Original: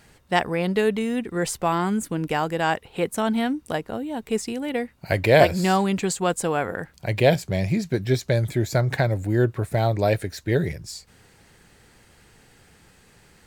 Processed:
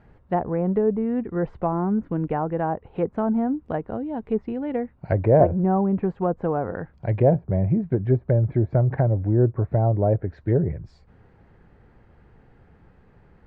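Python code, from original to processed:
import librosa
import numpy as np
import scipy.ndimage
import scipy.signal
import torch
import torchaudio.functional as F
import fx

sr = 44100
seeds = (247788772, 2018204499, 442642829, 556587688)

y = fx.env_lowpass_down(x, sr, base_hz=880.0, full_db=-18.0)
y = scipy.signal.sosfilt(scipy.signal.butter(2, 1200.0, 'lowpass', fs=sr, output='sos'), y)
y = fx.low_shelf(y, sr, hz=110.0, db=6.5)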